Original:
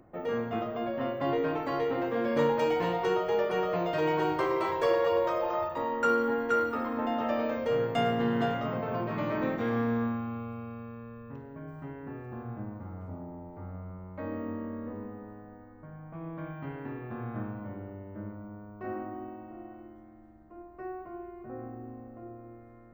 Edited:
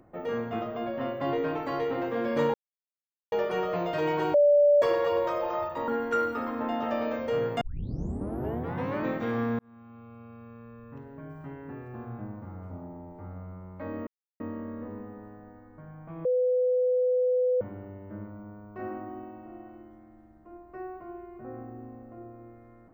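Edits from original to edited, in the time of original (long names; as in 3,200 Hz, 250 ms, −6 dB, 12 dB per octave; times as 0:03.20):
0:02.54–0:03.32: silence
0:04.34–0:04.82: beep over 582 Hz −16 dBFS
0:05.88–0:06.26: remove
0:07.99: tape start 1.42 s
0:09.97–0:11.50: fade in
0:14.45: splice in silence 0.33 s
0:16.30–0:17.66: beep over 502 Hz −21.5 dBFS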